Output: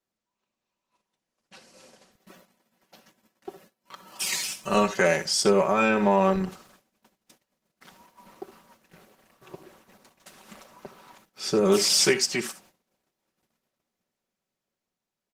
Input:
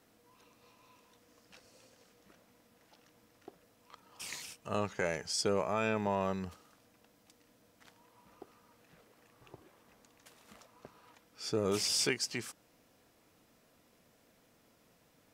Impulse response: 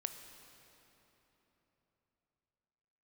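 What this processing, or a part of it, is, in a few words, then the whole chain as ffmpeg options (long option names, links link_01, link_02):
video call: -filter_complex "[0:a]asplit=3[link_01][link_02][link_03];[link_01]afade=type=out:start_time=4.06:duration=0.02[link_04];[link_02]highshelf=frequency=2700:gain=5,afade=type=in:start_time=4.06:duration=0.02,afade=type=out:start_time=5.28:duration=0.02[link_05];[link_03]afade=type=in:start_time=5.28:duration=0.02[link_06];[link_04][link_05][link_06]amix=inputs=3:normalize=0,highpass=140,aecho=1:1:5.3:0.78,aecho=1:1:63|76:0.158|0.15,dynaudnorm=framelen=130:gausssize=21:maxgain=5dB,agate=range=-26dB:threshold=-57dB:ratio=16:detection=peak,volume=4.5dB" -ar 48000 -c:a libopus -b:a 16k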